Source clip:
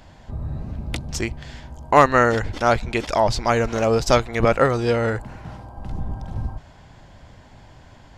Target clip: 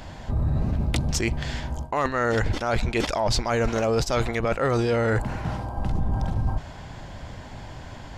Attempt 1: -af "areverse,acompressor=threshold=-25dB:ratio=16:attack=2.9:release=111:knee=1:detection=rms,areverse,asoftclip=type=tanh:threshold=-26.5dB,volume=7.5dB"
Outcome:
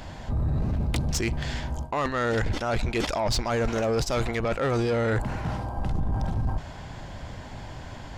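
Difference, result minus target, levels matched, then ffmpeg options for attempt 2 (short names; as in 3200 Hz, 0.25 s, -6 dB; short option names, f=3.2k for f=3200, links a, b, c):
soft clip: distortion +19 dB
-af "areverse,acompressor=threshold=-25dB:ratio=16:attack=2.9:release=111:knee=1:detection=rms,areverse,asoftclip=type=tanh:threshold=-15dB,volume=7.5dB"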